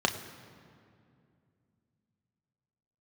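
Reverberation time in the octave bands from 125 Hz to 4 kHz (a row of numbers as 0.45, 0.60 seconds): 3.7, 3.5, 2.6, 2.2, 2.0, 1.5 seconds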